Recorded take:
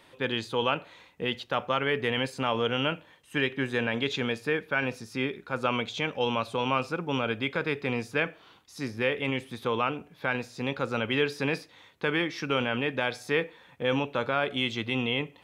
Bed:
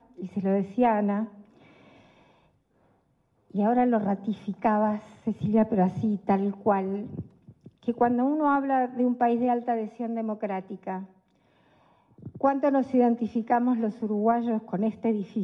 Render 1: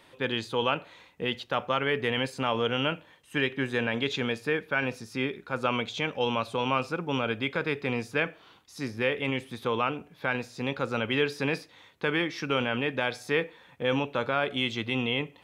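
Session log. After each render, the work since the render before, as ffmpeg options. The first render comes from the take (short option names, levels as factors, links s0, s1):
-af anull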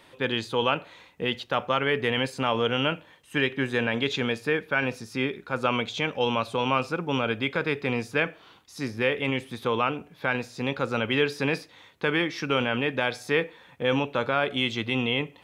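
-af "volume=1.33"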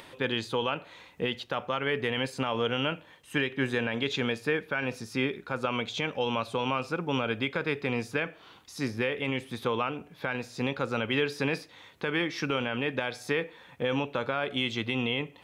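-af "alimiter=limit=0.141:level=0:latency=1:release=244,acompressor=mode=upward:threshold=0.00631:ratio=2.5"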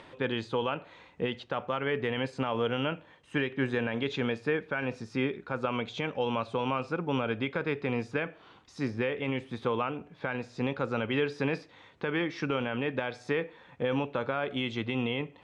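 -af "lowpass=f=8400:w=0.5412,lowpass=f=8400:w=1.3066,highshelf=f=3100:g=-11"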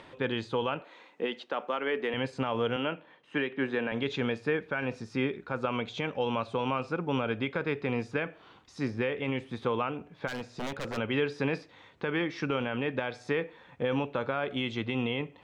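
-filter_complex "[0:a]asettb=1/sr,asplit=3[s0][s1][s2];[s0]atrim=end=0.814[s3];[s1]atrim=start=0.81:end=2.14,asetpts=PTS-STARTPTS,afade=t=in:d=0.004:c=qsin,afade=t=out:st=1.326:d=0.004:c=qsin,highpass=f=240:w=0.5412,highpass=f=240:w=1.3066[s4];[s2]atrim=start=2.136[s5];[s3][s4]acrossfade=d=0.004:c1=hsin:c2=qsin[s6];[s6][s5]acrossfade=d=0.004:c1=qsin:c2=hsin,asettb=1/sr,asplit=3[s7][s8][s9];[s7]atrim=end=2.764[s10];[s8]atrim=start=2.76:end=3.92,asetpts=PTS-STARTPTS,afade=t=in:d=0.004:c=qsin,afade=t=out:st=1.156:d=0.004:c=qsin,acrossover=split=160 5000:gain=0.0708 1 0.141[s11][s12][s13];[s11][s12][s13]amix=inputs=3:normalize=0[s14];[s9]atrim=start=3.916[s15];[s10][s14]acrossfade=d=0.004:c1=hsin:c2=qsin[s16];[s16][s15]acrossfade=d=0.004:c1=qsin:c2=hsin,asplit=3[s17][s18][s19];[s17]afade=t=out:st=10.27:d=0.02[s20];[s18]aeval=exprs='0.0335*(abs(mod(val(0)/0.0335+3,4)-2)-1)':c=same,afade=t=in:st=10.27:d=0.02,afade=t=out:st=10.96:d=0.02[s21];[s19]afade=t=in:st=10.96:d=0.02[s22];[s20][s21][s22]amix=inputs=3:normalize=0"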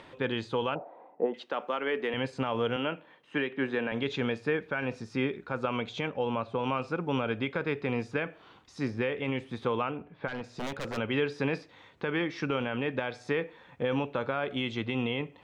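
-filter_complex "[0:a]asettb=1/sr,asplit=3[s0][s1][s2];[s0]atrim=end=0.754[s3];[s1]atrim=start=0.75:end=1.34,asetpts=PTS-STARTPTS,afade=t=in:d=0.004:c=qsin,afade=t=out:st=0.586:d=0.004:c=qsin,lowpass=f=730:t=q:w=4.3[s4];[s2]atrim=start=1.336[s5];[s3][s4]acrossfade=d=0.004:c1=hsin:c2=qsin[s6];[s6][s5]acrossfade=d=0.004:c1=qsin:c2=hsin,asettb=1/sr,asplit=3[s7][s8][s9];[s7]atrim=end=6.084[s10];[s8]atrim=start=6.08:end=6.64,asetpts=PTS-STARTPTS,afade=t=in:d=0.004:c=qsin,afade=t=out:st=0.556:d=0.004:c=qsin,lowpass=f=2000:p=1[s11];[s9]atrim=start=6.636[s12];[s10][s11]acrossfade=d=0.004:c1=hsin:c2=qsin[s13];[s13][s12]acrossfade=d=0.004:c1=qsin:c2=hsin,asettb=1/sr,asplit=3[s14][s15][s16];[s14]atrim=end=9.914[s17];[s15]atrim=start=9.91:end=10.44,asetpts=PTS-STARTPTS,afade=t=in:d=0.004:c=qsin,afade=t=out:st=0.526:d=0.004:c=qsin,lowpass=2800[s18];[s16]atrim=start=10.436[s19];[s17][s18]acrossfade=d=0.004:c1=hsin:c2=qsin[s20];[s20][s19]acrossfade=d=0.004:c1=qsin:c2=hsin"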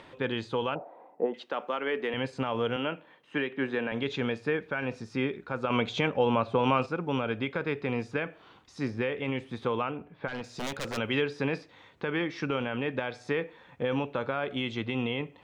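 -filter_complex "[0:a]asettb=1/sr,asplit=3[s0][s1][s2];[s0]atrim=end=10.334[s3];[s1]atrim=start=10.33:end=11.22,asetpts=PTS-STARTPTS,afade=t=in:d=0.004:c=qsin,afade=t=out:st=0.886:d=0.004:c=qsin,highshelf=f=3500:g=9[s4];[s2]atrim=start=11.216[s5];[s3][s4]acrossfade=d=0.004:c1=hsin:c2=qsin[s6];[s6][s5]acrossfade=d=0.004:c1=qsin:c2=hsin,asplit=3[s7][s8][s9];[s7]atrim=end=5.702[s10];[s8]atrim=start=5.698:end=6.862,asetpts=PTS-STARTPTS,volume=1.88[s11];[s9]atrim=start=6.858[s12];[s10][s11]acrossfade=d=0.004:c1=hsin:c2=hsin[s13];[s13][s12]acrossfade=d=0.004:c1=hsin:c2=hsin"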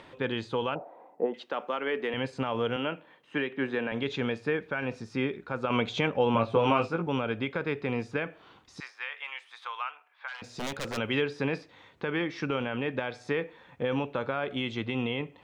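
-filter_complex "[0:a]asettb=1/sr,asplit=3[s0][s1][s2];[s0]atrim=end=6.334[s3];[s1]atrim=start=6.33:end=7.07,asetpts=PTS-STARTPTS,afade=t=in:d=0.004:c=qsin,afade=t=out:st=0.736:d=0.004:c=qsin,asplit=2[s4][s5];[s5]adelay=18,volume=0.596[s6];[s4][s6]amix=inputs=2:normalize=0,atrim=end_sample=32634[s7];[s2]atrim=start=7.066[s8];[s3][s7]acrossfade=d=0.004:c1=hsin:c2=qsin[s9];[s9][s8]acrossfade=d=0.004:c1=qsin:c2=hsin,asettb=1/sr,asplit=3[s10][s11][s12];[s10]atrim=end=8.804[s13];[s11]atrim=start=8.8:end=10.42,asetpts=PTS-STARTPTS,afade=t=in:d=0.004:c=qsin,afade=t=out:st=1.616:d=0.004:c=qsin,highpass=f=970:w=0.5412,highpass=f=970:w=1.3066[s14];[s12]atrim=start=10.416[s15];[s13][s14]acrossfade=d=0.004:c1=hsin:c2=qsin[s16];[s16][s15]acrossfade=d=0.004:c1=qsin:c2=hsin"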